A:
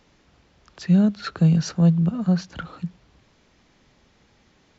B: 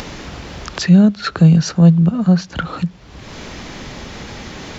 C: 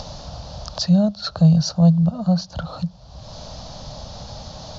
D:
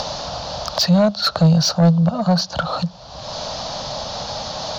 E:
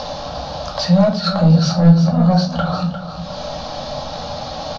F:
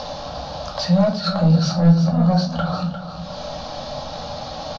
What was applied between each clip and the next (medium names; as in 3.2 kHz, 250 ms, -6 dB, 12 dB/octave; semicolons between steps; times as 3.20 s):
upward compressor, threshold -21 dBFS; trim +7.5 dB
FFT filter 140 Hz 0 dB, 380 Hz -19 dB, 610 Hz +4 dB, 1.3 kHz -9 dB, 2.1 kHz -22 dB, 4.5 kHz +3 dB, 6.4 kHz -3 dB, 9.9 kHz -27 dB; trim -1 dB
overdrive pedal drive 20 dB, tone 4.1 kHz, clips at -4.5 dBFS
distance through air 110 m; feedback delay 352 ms, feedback 30%, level -10 dB; simulated room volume 290 m³, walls furnished, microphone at 2.2 m; trim -3 dB
delay 274 ms -21.5 dB; trim -3.5 dB